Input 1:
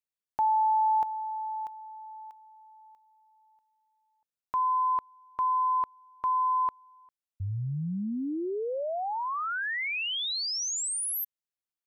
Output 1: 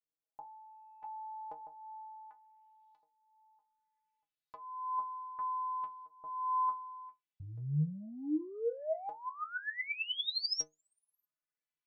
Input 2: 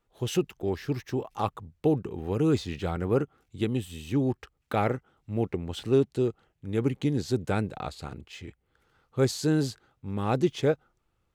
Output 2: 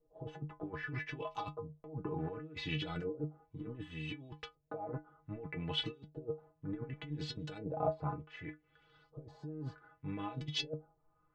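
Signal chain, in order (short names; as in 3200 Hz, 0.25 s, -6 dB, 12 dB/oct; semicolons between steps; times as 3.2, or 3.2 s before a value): negative-ratio compressor -32 dBFS, ratio -0.5; LFO low-pass saw up 0.66 Hz 480–4600 Hz; metallic resonator 150 Hz, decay 0.22 s, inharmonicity 0.008; gain +3 dB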